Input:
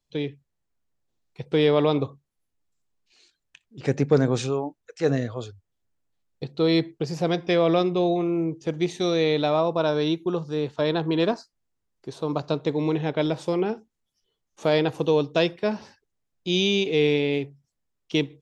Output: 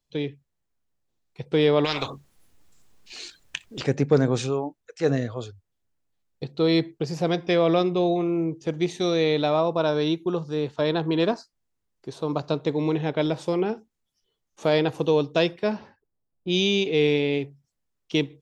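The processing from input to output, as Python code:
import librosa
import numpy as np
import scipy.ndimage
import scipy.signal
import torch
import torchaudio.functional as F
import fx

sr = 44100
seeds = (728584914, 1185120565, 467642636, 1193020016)

y = fx.spectral_comp(x, sr, ratio=4.0, at=(1.84, 3.82), fade=0.02)
y = fx.env_lowpass(y, sr, base_hz=830.0, full_db=-17.0, at=(15.71, 17.38), fade=0.02)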